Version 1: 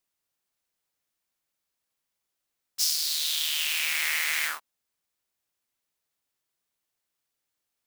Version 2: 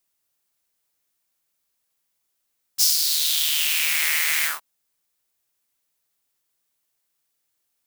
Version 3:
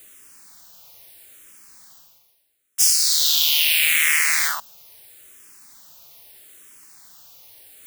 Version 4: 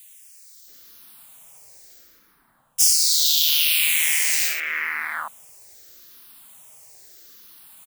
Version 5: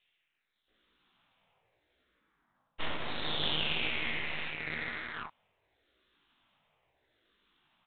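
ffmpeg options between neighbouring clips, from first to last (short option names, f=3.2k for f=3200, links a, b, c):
-af "highshelf=f=6.8k:g=7,volume=3dB"
-filter_complex "[0:a]areverse,acompressor=mode=upward:threshold=-30dB:ratio=2.5,areverse,asplit=2[a][b];[b]afreqshift=-0.77[c];[a][c]amix=inputs=2:normalize=1,volume=6dB"
-filter_complex "[0:a]acrossover=split=2100[a][b];[a]adelay=680[c];[c][b]amix=inputs=2:normalize=0"
-af "flanger=delay=16:depth=4.2:speed=1,aeval=exprs='0.501*(cos(1*acos(clip(val(0)/0.501,-1,1)))-cos(1*PI/2))+0.0891*(cos(6*acos(clip(val(0)/0.501,-1,1)))-cos(6*PI/2))+0.0282*(cos(7*acos(clip(val(0)/0.501,-1,1)))-cos(7*PI/2))':c=same,volume=-5.5dB" -ar 8000 -c:a adpcm_ima_wav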